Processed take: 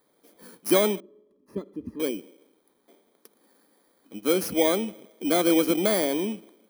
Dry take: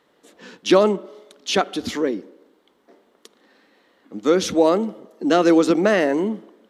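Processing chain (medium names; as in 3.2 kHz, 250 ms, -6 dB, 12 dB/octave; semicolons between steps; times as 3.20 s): bit-reversed sample order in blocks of 16 samples; 1.00–2.00 s: boxcar filter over 60 samples; trim -6 dB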